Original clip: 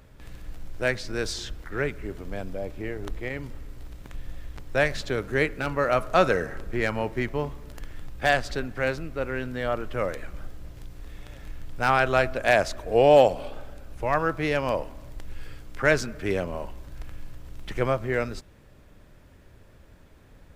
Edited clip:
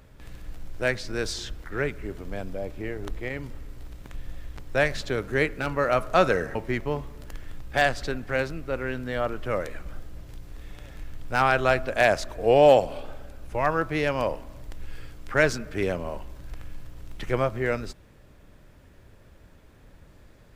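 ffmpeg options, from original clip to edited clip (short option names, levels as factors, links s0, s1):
-filter_complex "[0:a]asplit=2[s0][s1];[s0]atrim=end=6.552[s2];[s1]atrim=start=7.028[s3];[s2][s3]acrossfade=d=0.004:c1=hsin:c2=hsin"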